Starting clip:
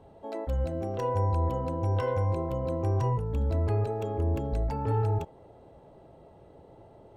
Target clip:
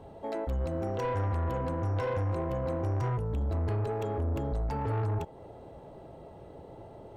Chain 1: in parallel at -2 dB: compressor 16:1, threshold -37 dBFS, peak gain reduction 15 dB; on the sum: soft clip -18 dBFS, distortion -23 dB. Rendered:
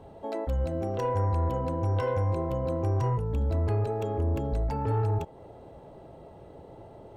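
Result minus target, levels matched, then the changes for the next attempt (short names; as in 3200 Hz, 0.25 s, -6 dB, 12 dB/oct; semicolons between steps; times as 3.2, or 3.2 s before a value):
soft clip: distortion -11 dB
change: soft clip -26.5 dBFS, distortion -12 dB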